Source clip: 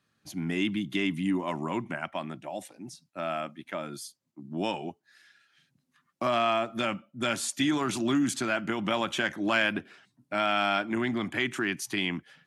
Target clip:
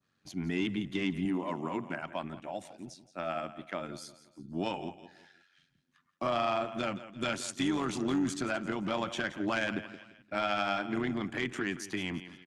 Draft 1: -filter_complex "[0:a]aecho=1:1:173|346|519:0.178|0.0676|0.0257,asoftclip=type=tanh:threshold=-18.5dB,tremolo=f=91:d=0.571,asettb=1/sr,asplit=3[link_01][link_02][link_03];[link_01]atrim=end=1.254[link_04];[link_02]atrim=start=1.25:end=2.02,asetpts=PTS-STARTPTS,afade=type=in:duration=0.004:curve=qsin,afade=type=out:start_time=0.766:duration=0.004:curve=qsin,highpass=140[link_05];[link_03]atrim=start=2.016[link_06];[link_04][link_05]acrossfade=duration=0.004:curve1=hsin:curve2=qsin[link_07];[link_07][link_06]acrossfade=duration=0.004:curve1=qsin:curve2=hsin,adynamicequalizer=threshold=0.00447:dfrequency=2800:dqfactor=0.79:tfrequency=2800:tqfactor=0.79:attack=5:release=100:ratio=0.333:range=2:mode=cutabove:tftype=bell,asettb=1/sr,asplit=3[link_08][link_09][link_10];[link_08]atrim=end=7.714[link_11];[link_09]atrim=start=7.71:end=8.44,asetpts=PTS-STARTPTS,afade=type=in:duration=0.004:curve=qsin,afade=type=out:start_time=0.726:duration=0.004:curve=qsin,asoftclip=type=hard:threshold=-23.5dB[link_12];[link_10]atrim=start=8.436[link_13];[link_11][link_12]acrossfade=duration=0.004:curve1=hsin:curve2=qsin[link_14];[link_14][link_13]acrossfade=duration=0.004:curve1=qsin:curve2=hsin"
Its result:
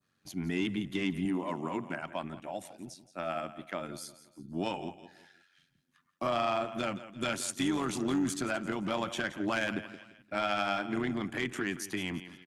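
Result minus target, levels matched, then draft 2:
8,000 Hz band +3.0 dB
-filter_complex "[0:a]aecho=1:1:173|346|519:0.178|0.0676|0.0257,asoftclip=type=tanh:threshold=-18.5dB,tremolo=f=91:d=0.571,asettb=1/sr,asplit=3[link_01][link_02][link_03];[link_01]atrim=end=1.254[link_04];[link_02]atrim=start=1.25:end=2.02,asetpts=PTS-STARTPTS,afade=type=in:duration=0.004:curve=qsin,afade=type=out:start_time=0.766:duration=0.004:curve=qsin,highpass=140[link_05];[link_03]atrim=start=2.016[link_06];[link_04][link_05]acrossfade=duration=0.004:curve1=hsin:curve2=qsin[link_07];[link_07][link_06]acrossfade=duration=0.004:curve1=qsin:curve2=hsin,adynamicequalizer=threshold=0.00447:dfrequency=2800:dqfactor=0.79:tfrequency=2800:tqfactor=0.79:attack=5:release=100:ratio=0.333:range=2:mode=cutabove:tftype=bell,lowpass=7400,asettb=1/sr,asplit=3[link_08][link_09][link_10];[link_08]atrim=end=7.714[link_11];[link_09]atrim=start=7.71:end=8.44,asetpts=PTS-STARTPTS,afade=type=in:duration=0.004:curve=qsin,afade=type=out:start_time=0.726:duration=0.004:curve=qsin,asoftclip=type=hard:threshold=-23.5dB[link_12];[link_10]atrim=start=8.436[link_13];[link_11][link_12]acrossfade=duration=0.004:curve1=hsin:curve2=qsin[link_14];[link_14][link_13]acrossfade=duration=0.004:curve1=qsin:curve2=hsin"

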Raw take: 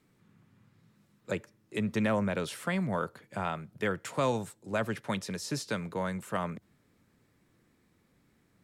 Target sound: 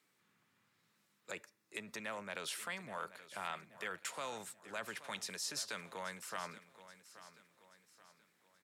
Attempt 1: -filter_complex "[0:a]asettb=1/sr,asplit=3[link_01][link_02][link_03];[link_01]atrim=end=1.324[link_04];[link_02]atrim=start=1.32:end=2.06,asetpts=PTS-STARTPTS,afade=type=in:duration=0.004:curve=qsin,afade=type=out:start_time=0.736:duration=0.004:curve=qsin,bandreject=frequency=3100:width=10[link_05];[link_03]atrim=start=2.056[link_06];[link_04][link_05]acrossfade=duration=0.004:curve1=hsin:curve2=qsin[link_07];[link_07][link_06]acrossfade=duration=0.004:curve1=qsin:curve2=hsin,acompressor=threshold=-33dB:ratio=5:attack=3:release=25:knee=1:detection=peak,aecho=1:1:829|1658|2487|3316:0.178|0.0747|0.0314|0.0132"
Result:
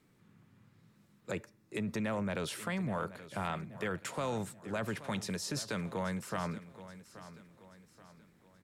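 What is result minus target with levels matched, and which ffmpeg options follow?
2,000 Hz band −3.5 dB
-filter_complex "[0:a]asettb=1/sr,asplit=3[link_01][link_02][link_03];[link_01]atrim=end=1.324[link_04];[link_02]atrim=start=1.32:end=2.06,asetpts=PTS-STARTPTS,afade=type=in:duration=0.004:curve=qsin,afade=type=out:start_time=0.736:duration=0.004:curve=qsin,bandreject=frequency=3100:width=10[link_05];[link_03]atrim=start=2.056[link_06];[link_04][link_05]acrossfade=duration=0.004:curve1=hsin:curve2=qsin[link_07];[link_07][link_06]acrossfade=duration=0.004:curve1=qsin:curve2=hsin,acompressor=threshold=-33dB:ratio=5:attack=3:release=25:knee=1:detection=peak,highpass=frequency=1500:poles=1,aecho=1:1:829|1658|2487|3316:0.178|0.0747|0.0314|0.0132"

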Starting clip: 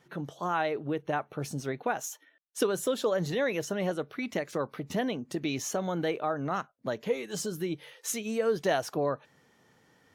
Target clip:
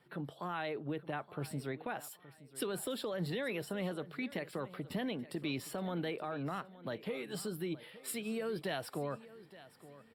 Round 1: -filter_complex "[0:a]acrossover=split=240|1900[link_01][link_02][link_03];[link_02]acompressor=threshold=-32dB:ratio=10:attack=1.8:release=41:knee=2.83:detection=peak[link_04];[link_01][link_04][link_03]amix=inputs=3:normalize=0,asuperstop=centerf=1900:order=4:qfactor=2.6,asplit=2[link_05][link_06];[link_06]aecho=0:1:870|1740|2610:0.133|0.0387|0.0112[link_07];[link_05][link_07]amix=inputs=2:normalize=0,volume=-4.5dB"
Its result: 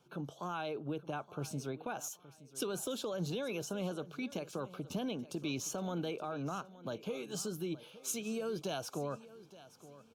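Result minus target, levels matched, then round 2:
8,000 Hz band +6.0 dB
-filter_complex "[0:a]acrossover=split=240|1900[link_01][link_02][link_03];[link_02]acompressor=threshold=-32dB:ratio=10:attack=1.8:release=41:knee=2.83:detection=peak[link_04];[link_01][link_04][link_03]amix=inputs=3:normalize=0,asuperstop=centerf=6300:order=4:qfactor=2.6,asplit=2[link_05][link_06];[link_06]aecho=0:1:870|1740|2610:0.133|0.0387|0.0112[link_07];[link_05][link_07]amix=inputs=2:normalize=0,volume=-4.5dB"

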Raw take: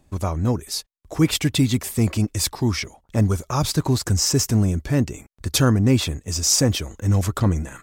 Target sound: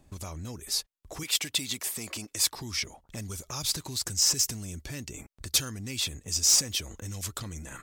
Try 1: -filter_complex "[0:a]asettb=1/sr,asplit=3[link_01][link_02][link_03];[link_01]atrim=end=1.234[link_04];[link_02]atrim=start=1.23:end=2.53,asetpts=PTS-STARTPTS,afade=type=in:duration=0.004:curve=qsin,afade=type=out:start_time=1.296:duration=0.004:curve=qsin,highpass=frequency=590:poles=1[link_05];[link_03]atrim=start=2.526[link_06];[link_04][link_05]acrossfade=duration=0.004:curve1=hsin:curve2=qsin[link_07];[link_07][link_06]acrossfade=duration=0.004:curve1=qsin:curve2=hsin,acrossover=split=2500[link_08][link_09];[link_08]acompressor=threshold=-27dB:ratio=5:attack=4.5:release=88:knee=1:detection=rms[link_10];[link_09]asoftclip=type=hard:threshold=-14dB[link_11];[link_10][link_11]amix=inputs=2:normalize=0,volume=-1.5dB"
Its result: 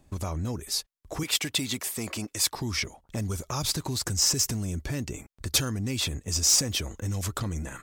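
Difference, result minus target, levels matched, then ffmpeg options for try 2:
downward compressor: peak gain reduction −8 dB
-filter_complex "[0:a]asettb=1/sr,asplit=3[link_01][link_02][link_03];[link_01]atrim=end=1.234[link_04];[link_02]atrim=start=1.23:end=2.53,asetpts=PTS-STARTPTS,afade=type=in:duration=0.004:curve=qsin,afade=type=out:start_time=1.296:duration=0.004:curve=qsin,highpass=frequency=590:poles=1[link_05];[link_03]atrim=start=2.526[link_06];[link_04][link_05]acrossfade=duration=0.004:curve1=hsin:curve2=qsin[link_07];[link_07][link_06]acrossfade=duration=0.004:curve1=qsin:curve2=hsin,acrossover=split=2500[link_08][link_09];[link_08]acompressor=threshold=-37dB:ratio=5:attack=4.5:release=88:knee=1:detection=rms[link_10];[link_09]asoftclip=type=hard:threshold=-14dB[link_11];[link_10][link_11]amix=inputs=2:normalize=0,volume=-1.5dB"

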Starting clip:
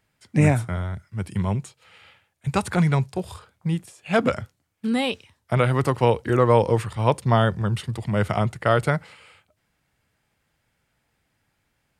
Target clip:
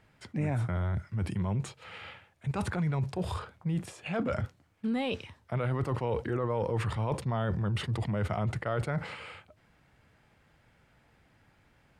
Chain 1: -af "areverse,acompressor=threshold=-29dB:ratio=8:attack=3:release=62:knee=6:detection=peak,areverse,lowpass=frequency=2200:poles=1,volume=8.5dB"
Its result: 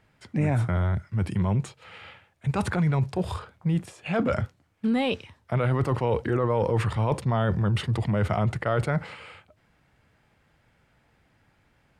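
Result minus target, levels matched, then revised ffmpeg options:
downward compressor: peak gain reduction −6.5 dB
-af "areverse,acompressor=threshold=-36.5dB:ratio=8:attack=3:release=62:knee=6:detection=peak,areverse,lowpass=frequency=2200:poles=1,volume=8.5dB"

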